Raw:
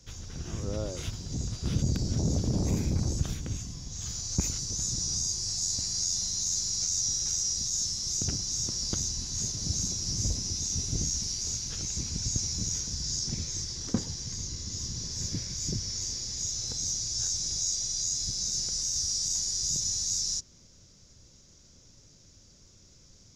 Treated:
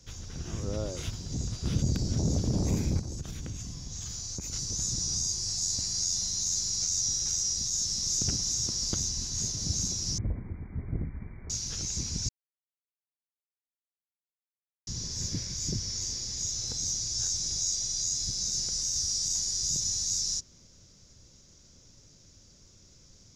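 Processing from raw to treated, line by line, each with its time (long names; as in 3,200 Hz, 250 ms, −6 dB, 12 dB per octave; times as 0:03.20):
0:02.99–0:04.53: downward compressor, threshold −33 dBFS
0:07.52–0:08.16: delay throw 370 ms, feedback 65%, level −4 dB
0:10.18–0:11.50: linear-phase brick-wall low-pass 2,400 Hz
0:12.29–0:14.87: silence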